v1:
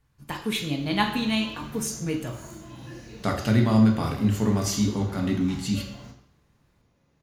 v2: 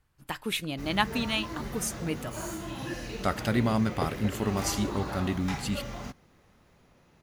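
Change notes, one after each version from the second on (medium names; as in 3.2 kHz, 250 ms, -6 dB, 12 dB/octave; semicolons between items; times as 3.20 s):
background +10.0 dB; reverb: off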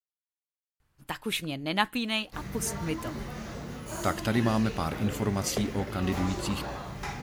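speech: entry +0.80 s; background: entry +1.55 s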